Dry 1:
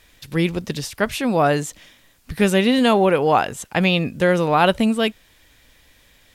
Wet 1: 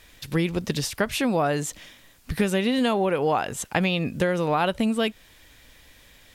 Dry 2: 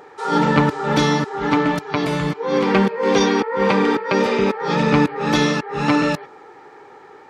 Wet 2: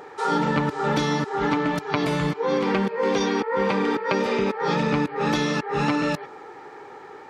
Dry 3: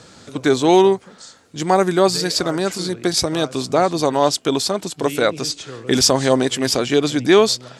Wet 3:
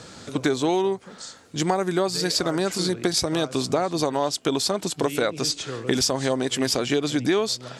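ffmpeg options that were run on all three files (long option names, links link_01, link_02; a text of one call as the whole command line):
ffmpeg -i in.wav -af "acompressor=threshold=-21dB:ratio=6,volume=1.5dB" out.wav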